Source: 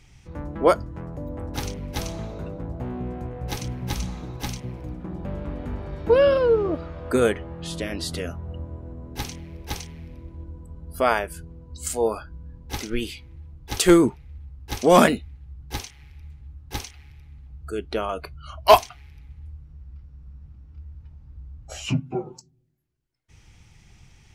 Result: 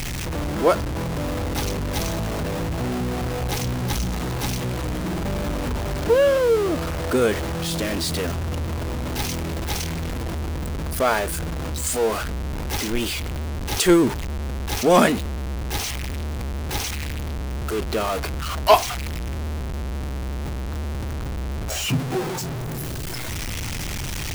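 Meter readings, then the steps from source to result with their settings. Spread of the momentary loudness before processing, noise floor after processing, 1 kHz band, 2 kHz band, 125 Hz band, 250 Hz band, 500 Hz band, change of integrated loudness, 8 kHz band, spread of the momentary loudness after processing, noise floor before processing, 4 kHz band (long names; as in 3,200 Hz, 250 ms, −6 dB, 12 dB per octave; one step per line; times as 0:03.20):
25 LU, −28 dBFS, +0.5 dB, +3.5 dB, +6.5 dB, +2.0 dB, +0.5 dB, +0.5 dB, +5.5 dB, 12 LU, −53 dBFS, +4.5 dB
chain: converter with a step at zero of −20.5 dBFS
level −2 dB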